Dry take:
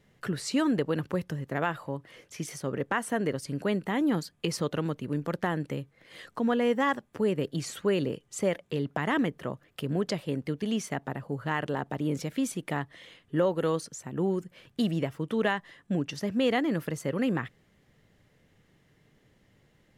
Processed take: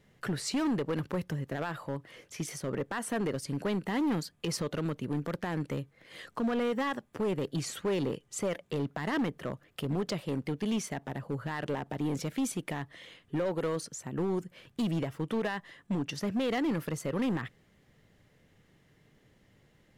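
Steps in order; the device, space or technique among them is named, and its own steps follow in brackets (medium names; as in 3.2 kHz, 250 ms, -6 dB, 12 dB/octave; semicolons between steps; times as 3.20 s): limiter into clipper (peak limiter -20.5 dBFS, peak gain reduction 7 dB; hard clipper -26 dBFS, distortion -14 dB)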